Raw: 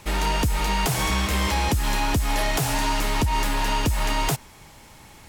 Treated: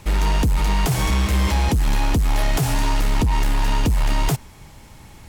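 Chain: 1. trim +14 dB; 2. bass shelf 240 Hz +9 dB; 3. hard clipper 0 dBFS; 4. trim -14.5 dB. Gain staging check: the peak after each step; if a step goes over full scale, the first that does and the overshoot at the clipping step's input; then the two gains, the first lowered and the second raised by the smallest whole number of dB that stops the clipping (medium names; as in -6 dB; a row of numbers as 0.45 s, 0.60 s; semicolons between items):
-1.0 dBFS, +6.5 dBFS, 0.0 dBFS, -14.5 dBFS; step 2, 6.5 dB; step 1 +7 dB, step 4 -7.5 dB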